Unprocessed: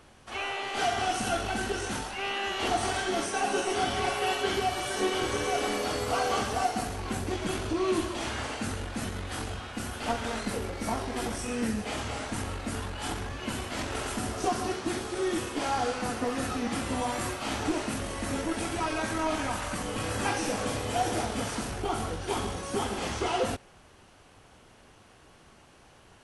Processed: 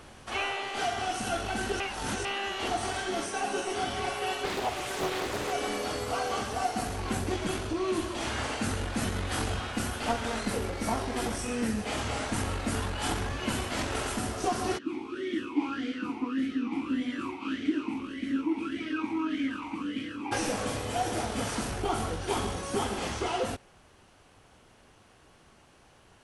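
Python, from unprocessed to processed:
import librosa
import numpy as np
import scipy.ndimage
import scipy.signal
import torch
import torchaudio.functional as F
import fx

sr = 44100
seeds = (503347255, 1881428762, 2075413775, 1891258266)

y = fx.doppler_dist(x, sr, depth_ms=0.73, at=(4.44, 5.53))
y = fx.vowel_sweep(y, sr, vowels='i-u', hz=1.7, at=(14.77, 20.31), fade=0.02)
y = fx.edit(y, sr, fx.reverse_span(start_s=1.8, length_s=0.45), tone=tone)
y = fx.rider(y, sr, range_db=10, speed_s=0.5)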